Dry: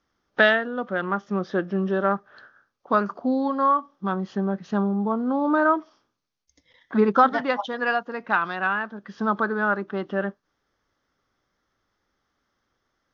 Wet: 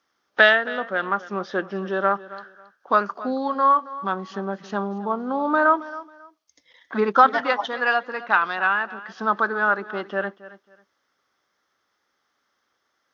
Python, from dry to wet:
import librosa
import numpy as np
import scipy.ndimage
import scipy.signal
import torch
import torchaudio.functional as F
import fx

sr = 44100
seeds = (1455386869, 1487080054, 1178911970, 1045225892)

y = fx.highpass(x, sr, hz=680.0, slope=6)
y = fx.echo_feedback(y, sr, ms=272, feedback_pct=24, wet_db=-17.0)
y = y * 10.0 ** (4.5 / 20.0)